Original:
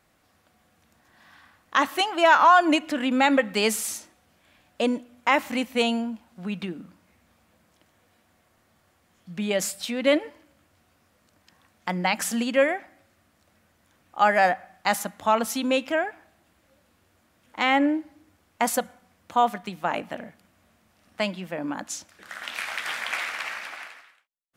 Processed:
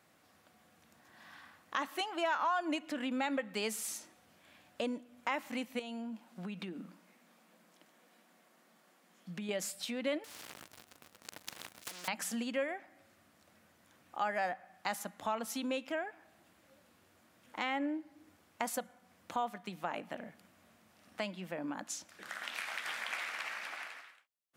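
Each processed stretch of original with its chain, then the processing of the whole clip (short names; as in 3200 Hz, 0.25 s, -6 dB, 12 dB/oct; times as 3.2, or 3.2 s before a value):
5.79–9.49 compressor 3:1, threshold -33 dBFS + brick-wall FIR high-pass 150 Hz
10.24–12.08 compressor 3:1, threshold -39 dBFS + sample leveller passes 5 + spectral compressor 10:1
whole clip: HPF 120 Hz 12 dB/oct; compressor 2:1, threshold -41 dBFS; gain -1.5 dB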